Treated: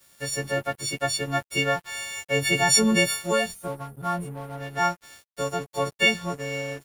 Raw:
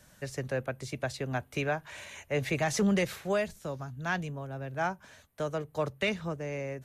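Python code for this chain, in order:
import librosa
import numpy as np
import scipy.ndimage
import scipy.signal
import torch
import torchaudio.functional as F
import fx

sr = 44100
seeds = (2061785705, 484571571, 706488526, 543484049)

y = fx.freq_snap(x, sr, grid_st=4)
y = fx.spec_box(y, sr, start_s=3.55, length_s=1.03, low_hz=1400.0, high_hz=8500.0, gain_db=-18)
y = np.sign(y) * np.maximum(np.abs(y) - 10.0 ** (-48.0 / 20.0), 0.0)
y = y * librosa.db_to_amplitude(5.5)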